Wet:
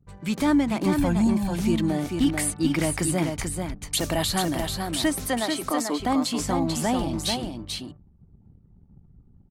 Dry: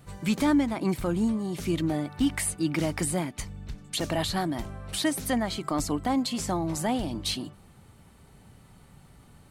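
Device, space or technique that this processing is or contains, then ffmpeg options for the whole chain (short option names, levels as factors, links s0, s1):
voice memo with heavy noise removal: -filter_complex "[0:a]asettb=1/sr,asplit=3[s0][s1][s2];[s0]atrim=end=0.974[s3];[s1]atrim=start=0.97:end=1.55,asetpts=PTS-STARTPTS,afade=t=in:d=0.004:c=qsin,afade=t=out:st=0.576:d=0.004:c=qsin,aecho=1:1:1.2:0.84,atrim=end_sample=25578[s4];[s2]atrim=start=1.546[s5];[s3][s4]acrossfade=d=0.004:c1=hsin:c2=qsin[s6];[s6][s5]acrossfade=d=0.004:c1=qsin:c2=hsin,asettb=1/sr,asplit=3[s7][s8][s9];[s7]atrim=end=3.914[s10];[s8]atrim=start=3.91:end=4.73,asetpts=PTS-STARTPTS,afade=t=in:d=0.004:c=qsin,afade=t=out:st=0.816:d=0.004:c=qsin,highshelf=f=8400:g=11[s11];[s9]atrim=start=4.726[s12];[s10][s11]acrossfade=d=0.004:c1=hsin:c2=qsin[s13];[s13][s12]acrossfade=d=0.004:c1=qsin:c2=hsin,asettb=1/sr,asplit=3[s14][s15][s16];[s14]atrim=end=5.264[s17];[s15]atrim=start=5.26:end=6,asetpts=PTS-STARTPTS,afade=t=in:d=0.004:c=qsin,afade=t=out:st=0.736:d=0.004:c=qsin,highpass=f=260:w=0.5412,highpass=f=260:w=1.3066[s18];[s16]atrim=start=5.996[s19];[s17][s18]acrossfade=d=0.004:c1=hsin:c2=qsin[s20];[s20][s19]acrossfade=d=0.004:c1=qsin:c2=hsin,anlmdn=0.0158,dynaudnorm=f=250:g=3:m=1.88,aecho=1:1:439:0.562,volume=0.708"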